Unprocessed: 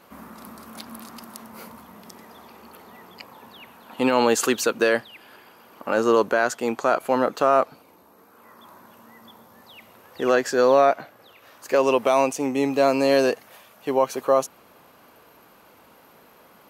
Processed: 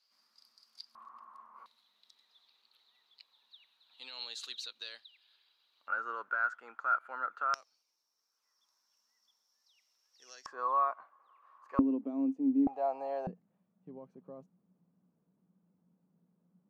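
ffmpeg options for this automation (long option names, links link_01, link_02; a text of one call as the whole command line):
ffmpeg -i in.wav -af "asetnsamples=nb_out_samples=441:pad=0,asendcmd='0.95 bandpass f 1100;1.66 bandpass f 3900;5.88 bandpass f 1400;7.54 bandpass f 5500;10.46 bandpass f 1100;11.79 bandpass f 270;12.67 bandpass f 770;13.27 bandpass f 180',bandpass=frequency=4800:width_type=q:width=13:csg=0" out.wav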